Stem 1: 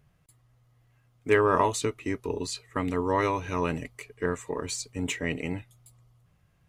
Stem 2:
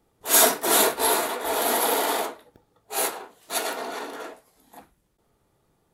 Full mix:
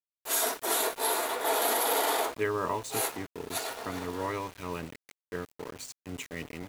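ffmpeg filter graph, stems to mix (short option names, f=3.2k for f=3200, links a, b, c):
-filter_complex "[0:a]highpass=f=71:w=0.5412,highpass=f=71:w=1.3066,bandreject=f=129.7:t=h:w=4,bandreject=f=259.4:t=h:w=4,bandreject=f=389.1:t=h:w=4,bandreject=f=518.8:t=h:w=4,bandreject=f=648.5:t=h:w=4,bandreject=f=778.2:t=h:w=4,bandreject=f=907.9:t=h:w=4,bandreject=f=1.0376k:t=h:w=4,adelay=1100,volume=-8dB[a];[1:a]highpass=320,afade=t=in:st=1.15:d=0.32:silence=0.473151,afade=t=out:st=2.51:d=0.68:silence=0.446684[b];[a][b]amix=inputs=2:normalize=0,aeval=exprs='val(0)*gte(abs(val(0)),0.00944)':c=same,alimiter=limit=-17dB:level=0:latency=1:release=67"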